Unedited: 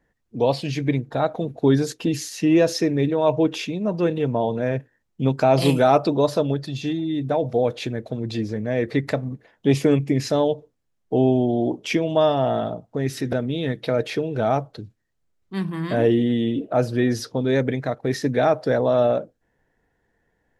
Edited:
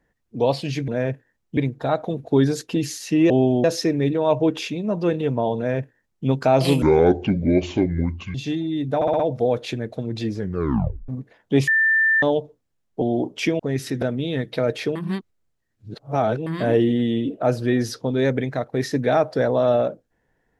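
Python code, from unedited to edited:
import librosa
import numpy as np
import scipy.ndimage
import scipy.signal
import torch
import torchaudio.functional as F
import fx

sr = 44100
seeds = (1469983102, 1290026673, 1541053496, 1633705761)

y = fx.edit(x, sr, fx.duplicate(start_s=4.54, length_s=0.69, to_s=0.88),
    fx.speed_span(start_s=5.79, length_s=0.93, speed=0.61),
    fx.stutter(start_s=7.33, slice_s=0.06, count=5),
    fx.tape_stop(start_s=8.52, length_s=0.7),
    fx.bleep(start_s=9.81, length_s=0.55, hz=1780.0, db=-14.5),
    fx.move(start_s=11.15, length_s=0.34, to_s=2.61),
    fx.cut(start_s=12.07, length_s=0.83),
    fx.reverse_span(start_s=14.26, length_s=1.51), tone=tone)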